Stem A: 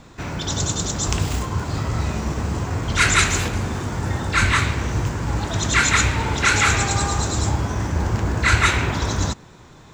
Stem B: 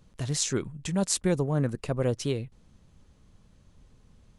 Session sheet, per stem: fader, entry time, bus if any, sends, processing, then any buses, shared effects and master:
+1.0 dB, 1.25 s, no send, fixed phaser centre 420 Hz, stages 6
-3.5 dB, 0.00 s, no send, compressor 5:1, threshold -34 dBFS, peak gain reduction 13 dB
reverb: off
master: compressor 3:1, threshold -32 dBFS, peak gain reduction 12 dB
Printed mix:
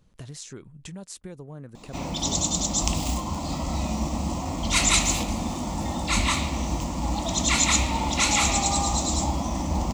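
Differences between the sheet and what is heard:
stem A: entry 1.25 s -> 1.75 s; master: missing compressor 3:1, threshold -32 dBFS, peak gain reduction 12 dB

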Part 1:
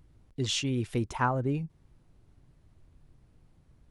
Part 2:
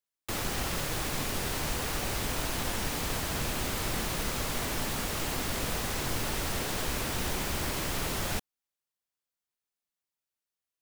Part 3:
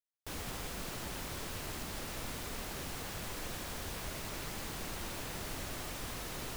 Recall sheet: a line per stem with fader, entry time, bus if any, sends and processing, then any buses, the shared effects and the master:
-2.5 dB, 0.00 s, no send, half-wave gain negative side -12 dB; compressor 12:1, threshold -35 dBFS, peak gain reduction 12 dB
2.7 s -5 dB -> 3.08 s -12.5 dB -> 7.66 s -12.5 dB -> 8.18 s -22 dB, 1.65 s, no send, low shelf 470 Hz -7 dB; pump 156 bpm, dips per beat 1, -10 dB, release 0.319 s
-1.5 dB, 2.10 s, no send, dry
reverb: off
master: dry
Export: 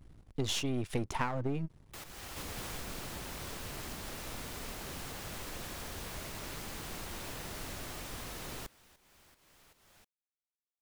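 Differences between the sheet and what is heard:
stem 1 -2.5 dB -> +6.5 dB; stem 2 -5.0 dB -> -11.5 dB

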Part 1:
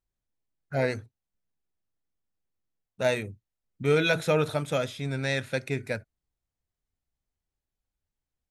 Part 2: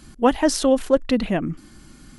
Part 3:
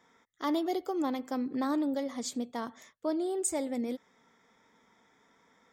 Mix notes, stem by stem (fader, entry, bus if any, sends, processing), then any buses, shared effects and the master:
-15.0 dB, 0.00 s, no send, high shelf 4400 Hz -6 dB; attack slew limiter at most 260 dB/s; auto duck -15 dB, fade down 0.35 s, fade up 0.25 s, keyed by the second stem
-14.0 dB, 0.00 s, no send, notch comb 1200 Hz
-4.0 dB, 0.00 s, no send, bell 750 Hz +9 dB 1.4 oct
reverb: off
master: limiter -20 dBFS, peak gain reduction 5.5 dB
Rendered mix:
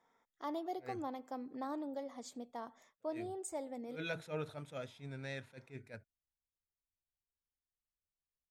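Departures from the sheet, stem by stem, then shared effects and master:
stem 2: muted; stem 3 -4.0 dB -> -14.5 dB

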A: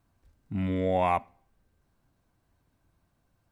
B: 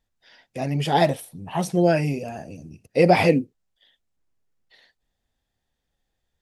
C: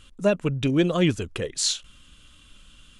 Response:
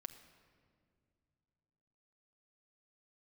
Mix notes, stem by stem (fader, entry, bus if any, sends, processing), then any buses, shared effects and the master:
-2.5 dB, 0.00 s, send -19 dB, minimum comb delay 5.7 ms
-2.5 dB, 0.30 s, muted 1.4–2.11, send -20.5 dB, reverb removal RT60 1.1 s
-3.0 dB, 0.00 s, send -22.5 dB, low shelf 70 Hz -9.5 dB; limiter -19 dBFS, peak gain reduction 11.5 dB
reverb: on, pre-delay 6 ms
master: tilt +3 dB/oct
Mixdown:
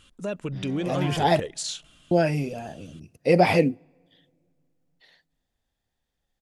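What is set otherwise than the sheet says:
stem A -2.5 dB -> -10.0 dB; stem B: missing reverb removal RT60 1.1 s; master: missing tilt +3 dB/oct

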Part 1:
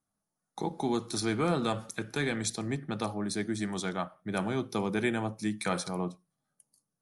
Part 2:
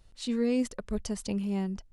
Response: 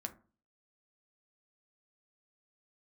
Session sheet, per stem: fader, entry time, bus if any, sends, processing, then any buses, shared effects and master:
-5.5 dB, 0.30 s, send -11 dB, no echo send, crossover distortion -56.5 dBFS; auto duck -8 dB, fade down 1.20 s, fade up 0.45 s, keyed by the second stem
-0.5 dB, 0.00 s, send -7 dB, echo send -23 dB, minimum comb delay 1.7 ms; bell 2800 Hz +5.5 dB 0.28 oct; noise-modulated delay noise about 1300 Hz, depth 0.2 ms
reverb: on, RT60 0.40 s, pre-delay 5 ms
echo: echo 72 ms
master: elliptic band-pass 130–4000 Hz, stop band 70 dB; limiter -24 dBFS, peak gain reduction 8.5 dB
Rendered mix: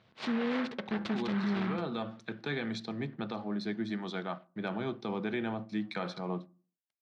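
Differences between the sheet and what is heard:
stem 2: missing minimum comb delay 1.7 ms; reverb return +7.5 dB

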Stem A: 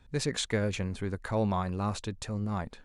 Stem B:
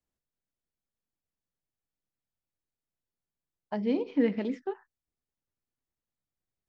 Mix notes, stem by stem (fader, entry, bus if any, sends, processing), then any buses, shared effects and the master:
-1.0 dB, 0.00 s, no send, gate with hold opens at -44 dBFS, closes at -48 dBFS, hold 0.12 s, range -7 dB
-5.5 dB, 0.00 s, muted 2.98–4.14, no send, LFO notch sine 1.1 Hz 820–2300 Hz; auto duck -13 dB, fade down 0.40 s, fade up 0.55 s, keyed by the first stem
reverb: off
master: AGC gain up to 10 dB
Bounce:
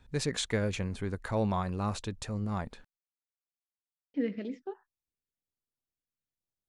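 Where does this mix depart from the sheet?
stem A: missing gate with hold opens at -44 dBFS, closes at -48 dBFS, hold 0.12 s, range -7 dB; master: missing AGC gain up to 10 dB

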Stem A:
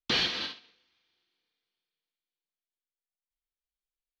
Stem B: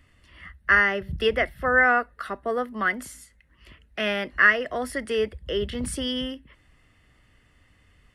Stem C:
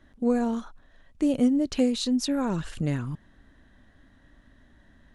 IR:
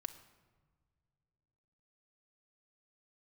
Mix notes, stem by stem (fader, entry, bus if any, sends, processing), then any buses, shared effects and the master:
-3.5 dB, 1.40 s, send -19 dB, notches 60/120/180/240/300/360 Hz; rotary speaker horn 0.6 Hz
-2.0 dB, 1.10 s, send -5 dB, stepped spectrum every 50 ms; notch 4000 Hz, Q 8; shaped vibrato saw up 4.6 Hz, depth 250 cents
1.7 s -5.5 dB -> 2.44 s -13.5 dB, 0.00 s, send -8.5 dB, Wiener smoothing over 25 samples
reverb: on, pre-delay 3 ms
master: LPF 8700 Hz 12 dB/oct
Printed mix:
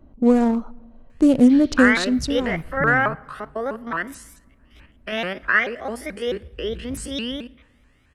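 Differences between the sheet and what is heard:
stem A -3.5 dB -> -15.0 dB; stem C -5.5 dB -> +6.5 dB; master: missing LPF 8700 Hz 12 dB/oct

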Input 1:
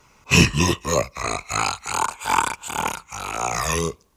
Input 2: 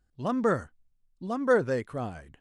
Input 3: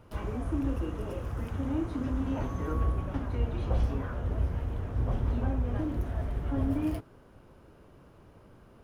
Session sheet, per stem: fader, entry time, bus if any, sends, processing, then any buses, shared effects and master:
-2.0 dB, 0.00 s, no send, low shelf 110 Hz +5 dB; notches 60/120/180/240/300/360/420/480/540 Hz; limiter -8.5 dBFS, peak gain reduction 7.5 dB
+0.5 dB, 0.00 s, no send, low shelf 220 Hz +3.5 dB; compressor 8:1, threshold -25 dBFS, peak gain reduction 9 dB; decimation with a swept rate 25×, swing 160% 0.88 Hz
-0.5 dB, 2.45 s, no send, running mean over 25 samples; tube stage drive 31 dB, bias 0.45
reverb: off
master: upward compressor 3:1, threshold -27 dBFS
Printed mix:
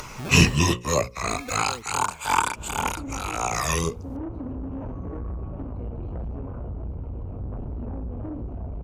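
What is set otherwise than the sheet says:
stem 1: missing limiter -8.5 dBFS, peak gain reduction 7.5 dB; stem 2 +0.5 dB -> -8.5 dB

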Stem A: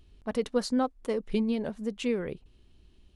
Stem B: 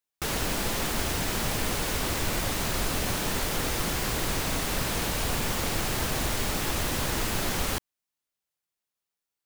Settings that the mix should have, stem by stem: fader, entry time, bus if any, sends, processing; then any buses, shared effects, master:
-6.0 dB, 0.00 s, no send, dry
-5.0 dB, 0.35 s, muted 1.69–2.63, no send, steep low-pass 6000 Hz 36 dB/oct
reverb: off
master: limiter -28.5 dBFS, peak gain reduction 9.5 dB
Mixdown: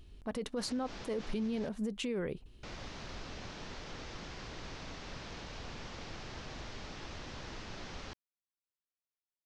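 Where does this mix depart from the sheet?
stem A -6.0 dB -> +2.5 dB; stem B -5.0 dB -> -16.0 dB

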